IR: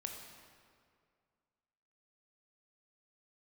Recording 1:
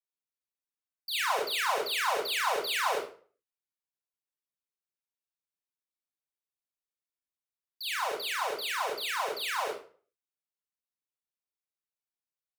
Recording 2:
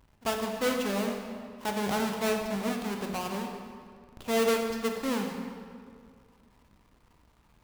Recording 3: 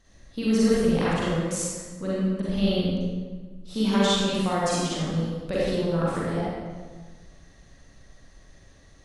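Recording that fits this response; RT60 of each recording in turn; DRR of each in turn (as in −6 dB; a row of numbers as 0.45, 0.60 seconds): 2; 0.45, 2.1, 1.4 seconds; −4.5, 2.0, −8.5 decibels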